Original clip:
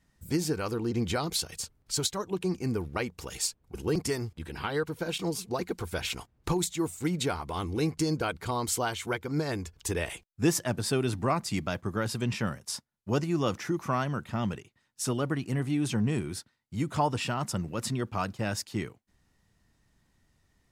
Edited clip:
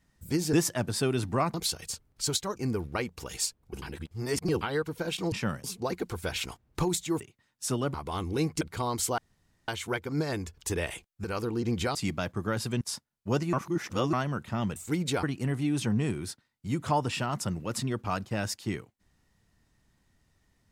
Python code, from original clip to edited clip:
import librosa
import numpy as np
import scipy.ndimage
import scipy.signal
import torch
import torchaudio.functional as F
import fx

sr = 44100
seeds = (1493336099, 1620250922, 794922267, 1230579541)

y = fx.edit(x, sr, fx.swap(start_s=0.53, length_s=0.71, other_s=10.43, other_length_s=1.01),
    fx.cut(start_s=2.26, length_s=0.31),
    fx.reverse_span(start_s=3.83, length_s=0.79),
    fx.swap(start_s=6.89, length_s=0.47, other_s=14.57, other_length_s=0.74),
    fx.cut(start_s=8.03, length_s=0.27),
    fx.insert_room_tone(at_s=8.87, length_s=0.5),
    fx.move(start_s=12.3, length_s=0.32, to_s=5.33),
    fx.reverse_span(start_s=13.34, length_s=0.6), tone=tone)